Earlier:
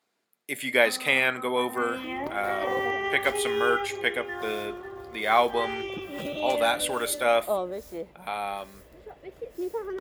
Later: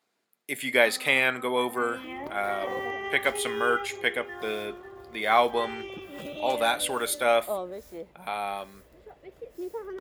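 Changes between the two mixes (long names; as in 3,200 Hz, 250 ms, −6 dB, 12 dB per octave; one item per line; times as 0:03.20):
first sound −5.0 dB
second sound −4.0 dB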